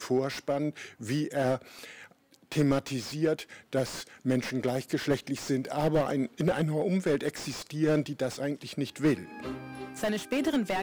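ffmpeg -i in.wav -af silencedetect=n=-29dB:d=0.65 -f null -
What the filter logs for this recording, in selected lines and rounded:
silence_start: 1.56
silence_end: 2.52 | silence_duration: 0.96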